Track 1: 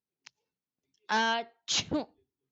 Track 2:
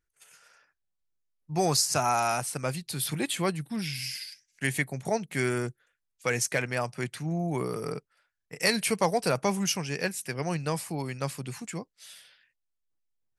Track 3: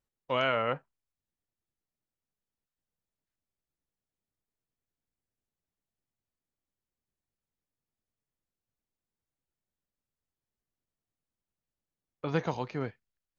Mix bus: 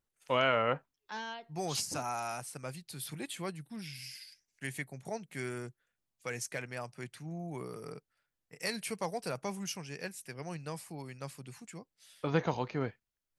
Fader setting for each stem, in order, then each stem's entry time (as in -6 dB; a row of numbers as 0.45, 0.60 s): -13.5, -11.0, 0.0 dB; 0.00, 0.00, 0.00 s